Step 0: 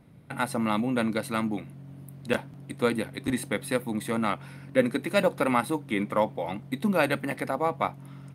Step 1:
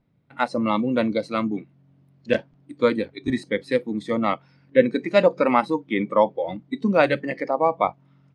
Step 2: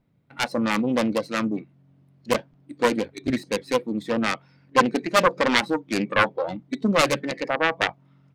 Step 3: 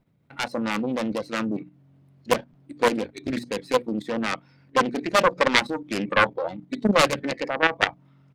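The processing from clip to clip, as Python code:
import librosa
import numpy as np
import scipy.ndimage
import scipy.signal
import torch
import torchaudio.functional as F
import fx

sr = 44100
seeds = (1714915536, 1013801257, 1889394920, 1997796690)

y1 = fx.noise_reduce_blind(x, sr, reduce_db=16)
y1 = scipy.signal.sosfilt(scipy.signal.butter(4, 6000.0, 'lowpass', fs=sr, output='sos'), y1)
y1 = fx.dynamic_eq(y1, sr, hz=660.0, q=0.85, threshold_db=-37.0, ratio=4.0, max_db=5)
y1 = y1 * librosa.db_to_amplitude(3.0)
y2 = fx.self_delay(y1, sr, depth_ms=0.86)
y3 = fx.hum_notches(y2, sr, base_hz=60, count=5)
y3 = fx.level_steps(y3, sr, step_db=10)
y3 = fx.doppler_dist(y3, sr, depth_ms=0.33)
y3 = y3 * librosa.db_to_amplitude(4.0)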